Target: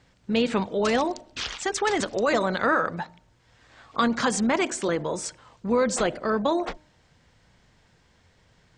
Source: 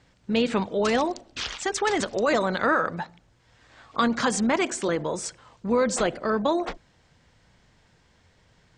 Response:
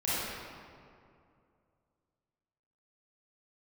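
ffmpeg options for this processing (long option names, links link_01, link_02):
-af "bandreject=frequency=304.7:width_type=h:width=4,bandreject=frequency=609.4:width_type=h:width=4,bandreject=frequency=914.1:width_type=h:width=4"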